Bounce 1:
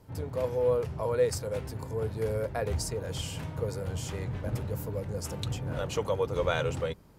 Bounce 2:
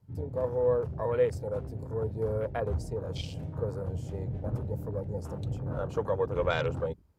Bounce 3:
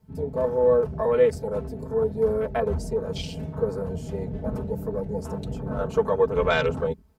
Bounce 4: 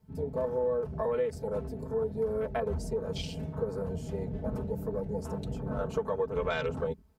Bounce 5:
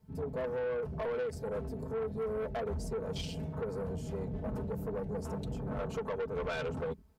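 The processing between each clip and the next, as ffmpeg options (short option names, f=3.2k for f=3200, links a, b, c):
-af "afwtdn=0.01"
-af "aecho=1:1:4.6:0.86,volume=5dB"
-af "acompressor=threshold=-23dB:ratio=5,volume=-4dB"
-af "asoftclip=type=tanh:threshold=-31dB"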